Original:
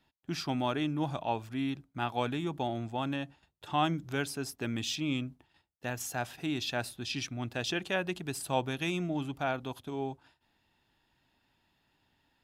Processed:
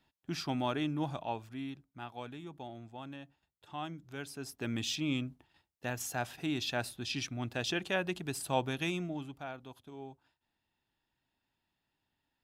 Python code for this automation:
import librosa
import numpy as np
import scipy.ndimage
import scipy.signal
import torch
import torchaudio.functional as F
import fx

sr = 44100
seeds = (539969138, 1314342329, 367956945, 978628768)

y = fx.gain(x, sr, db=fx.line((0.97, -2.0), (2.13, -12.0), (4.06, -12.0), (4.73, -1.0), (8.84, -1.0), (9.48, -11.0)))